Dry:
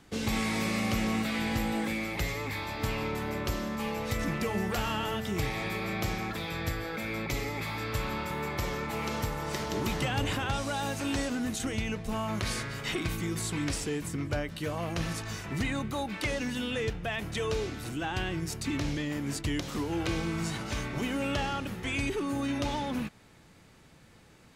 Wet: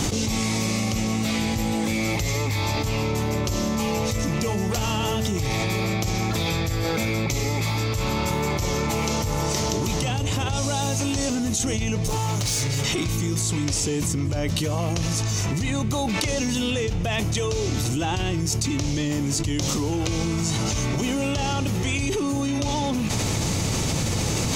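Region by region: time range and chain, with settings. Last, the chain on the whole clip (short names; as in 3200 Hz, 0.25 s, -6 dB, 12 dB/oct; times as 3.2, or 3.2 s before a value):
12.02–12.83 high shelf 5500 Hz +3.5 dB + comb 6.8 ms, depth 93% + hard clip -32.5 dBFS
whole clip: fifteen-band EQ 100 Hz +8 dB, 1600 Hz -9 dB, 6300 Hz +10 dB; fast leveller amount 100%; gain -2 dB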